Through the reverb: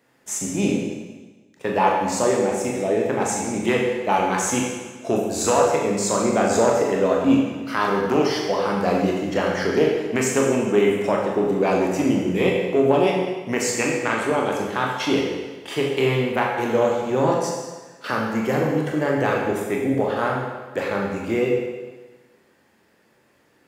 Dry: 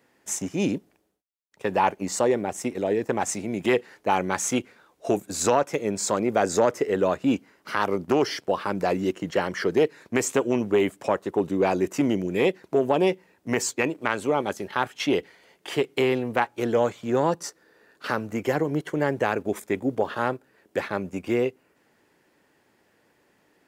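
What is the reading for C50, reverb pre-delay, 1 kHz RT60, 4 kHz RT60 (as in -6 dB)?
1.5 dB, 22 ms, 1.3 s, 1.3 s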